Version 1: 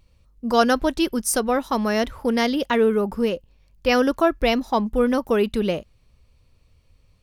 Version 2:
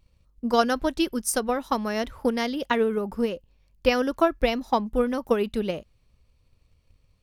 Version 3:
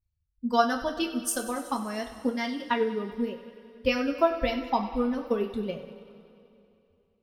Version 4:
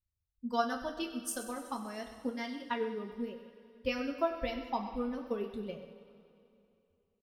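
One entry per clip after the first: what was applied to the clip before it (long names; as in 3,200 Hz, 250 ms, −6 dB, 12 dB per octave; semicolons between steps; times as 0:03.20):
transient designer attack +8 dB, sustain +2 dB; level −7 dB
spectral dynamics exaggerated over time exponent 1.5; feedback echo with a high-pass in the loop 95 ms, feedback 71%, high-pass 420 Hz, level −14.5 dB; coupled-rooms reverb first 0.29 s, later 2.9 s, from −18 dB, DRR 2.5 dB; level −3 dB
single-tap delay 130 ms −14 dB; level −8.5 dB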